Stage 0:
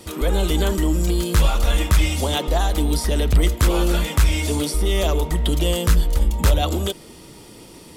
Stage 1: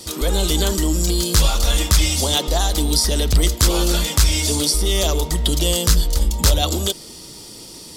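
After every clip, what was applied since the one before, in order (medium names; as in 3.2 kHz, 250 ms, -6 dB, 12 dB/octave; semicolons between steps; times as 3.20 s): FFT filter 2.5 kHz 0 dB, 4.8 kHz +13 dB, 11 kHz +7 dB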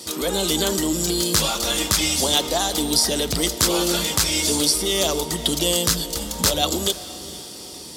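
high-pass 150 Hz 12 dB/octave; echo that smears into a reverb 457 ms, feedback 46%, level -16 dB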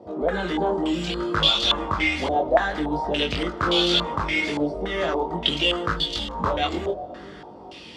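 chorus 0.67 Hz, delay 19.5 ms, depth 3.7 ms; step-sequenced low-pass 3.5 Hz 680–3400 Hz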